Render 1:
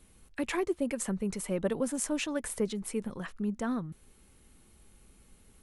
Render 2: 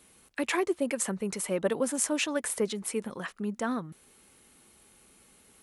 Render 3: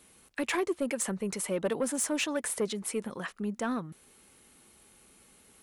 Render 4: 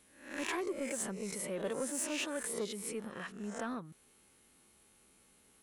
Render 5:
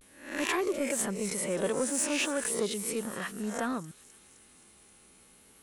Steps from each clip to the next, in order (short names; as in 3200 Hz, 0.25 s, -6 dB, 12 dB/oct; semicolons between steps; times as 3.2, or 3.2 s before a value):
HPF 400 Hz 6 dB/oct; gain +5.5 dB
soft clip -21.5 dBFS, distortion -17 dB
spectral swells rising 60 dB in 0.54 s; gain -8.5 dB
thin delay 0.258 s, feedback 65%, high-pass 4300 Hz, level -11.5 dB; vibrato 0.37 Hz 44 cents; gain +7 dB